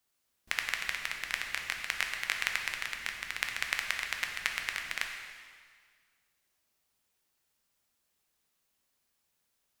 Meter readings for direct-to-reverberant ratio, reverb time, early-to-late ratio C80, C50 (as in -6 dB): 2.0 dB, 1.8 s, 5.5 dB, 4.5 dB